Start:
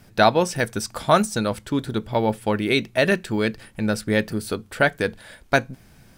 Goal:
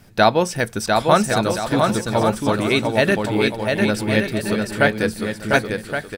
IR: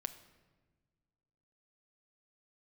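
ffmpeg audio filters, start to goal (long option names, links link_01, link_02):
-af "aecho=1:1:700|1120|1372|1523|1614:0.631|0.398|0.251|0.158|0.1,volume=1.5dB"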